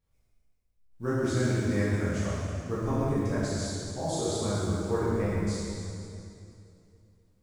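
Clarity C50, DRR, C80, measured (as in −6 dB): −3.5 dB, −10.0 dB, −2.0 dB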